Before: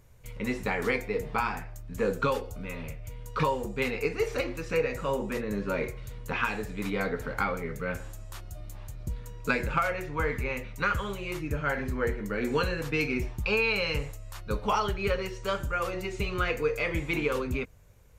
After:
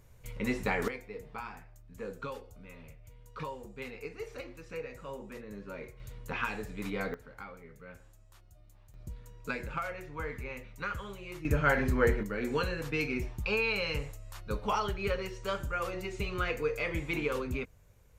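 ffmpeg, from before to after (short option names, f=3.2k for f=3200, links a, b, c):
-af "asetnsamples=n=441:p=0,asendcmd='0.88 volume volume -13dB;6 volume volume -5dB;7.14 volume volume -17dB;8.94 volume volume -9dB;11.45 volume volume 3dB;12.23 volume volume -4dB',volume=-1dB"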